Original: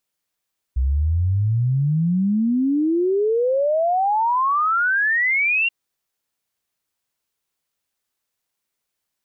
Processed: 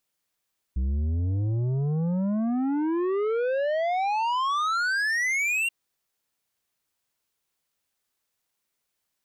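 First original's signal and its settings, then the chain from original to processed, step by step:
log sweep 62 Hz -> 2.8 kHz 4.93 s -16 dBFS
saturation -24 dBFS

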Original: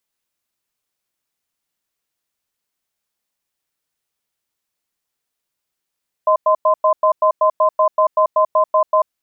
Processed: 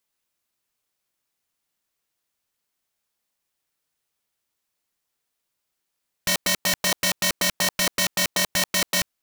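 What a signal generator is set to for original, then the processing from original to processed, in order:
cadence 626 Hz, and 1.03 kHz, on 0.09 s, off 0.10 s, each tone -13 dBFS 2.78 s
integer overflow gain 15.5 dB

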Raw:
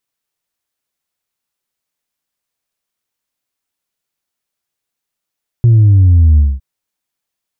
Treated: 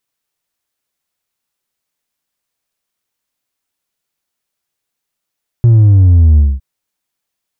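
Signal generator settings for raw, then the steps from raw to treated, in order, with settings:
sub drop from 120 Hz, over 0.96 s, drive 1 dB, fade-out 0.22 s, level -4.5 dB
in parallel at -10 dB: saturation -17.5 dBFS

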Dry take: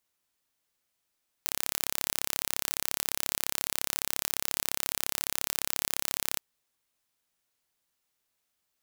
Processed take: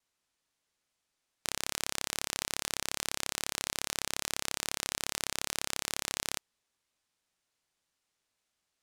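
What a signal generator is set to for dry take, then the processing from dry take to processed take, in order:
pulse train 34.4 per s, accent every 0, -2 dBFS 4.94 s
low-pass 8.9 kHz 12 dB/octave; vibrato 2.4 Hz 48 cents

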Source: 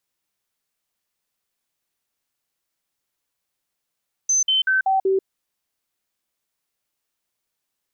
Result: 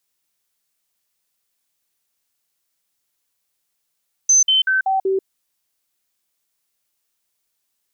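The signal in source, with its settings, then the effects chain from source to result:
stepped sine 6.15 kHz down, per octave 1, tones 5, 0.14 s, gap 0.05 s -15.5 dBFS
treble shelf 3.3 kHz +7.5 dB

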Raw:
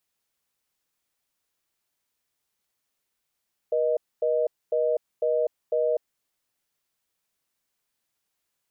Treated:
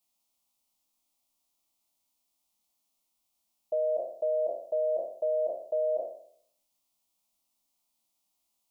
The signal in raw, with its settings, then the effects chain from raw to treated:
call progress tone reorder tone, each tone -23.5 dBFS 2.44 s
spectral sustain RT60 0.63 s; static phaser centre 440 Hz, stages 6

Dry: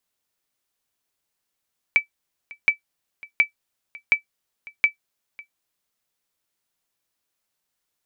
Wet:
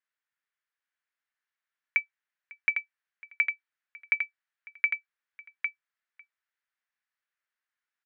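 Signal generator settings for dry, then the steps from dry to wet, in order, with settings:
sonar ping 2.31 kHz, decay 0.11 s, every 0.72 s, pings 5, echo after 0.55 s, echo -23 dB -7 dBFS
band-pass filter 1.7 kHz, Q 2.7; on a send: delay 804 ms -5.5 dB

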